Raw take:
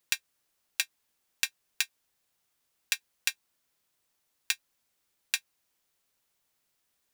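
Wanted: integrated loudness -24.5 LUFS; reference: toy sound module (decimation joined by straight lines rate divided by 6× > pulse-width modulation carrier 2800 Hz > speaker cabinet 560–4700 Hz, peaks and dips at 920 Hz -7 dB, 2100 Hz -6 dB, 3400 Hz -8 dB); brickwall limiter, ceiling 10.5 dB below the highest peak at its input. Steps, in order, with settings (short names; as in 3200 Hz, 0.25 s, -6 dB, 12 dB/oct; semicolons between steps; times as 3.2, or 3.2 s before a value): limiter -14 dBFS; decimation joined by straight lines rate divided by 6×; pulse-width modulation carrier 2800 Hz; speaker cabinet 560–4700 Hz, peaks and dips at 920 Hz -7 dB, 2100 Hz -6 dB, 3400 Hz -8 dB; gain +14.5 dB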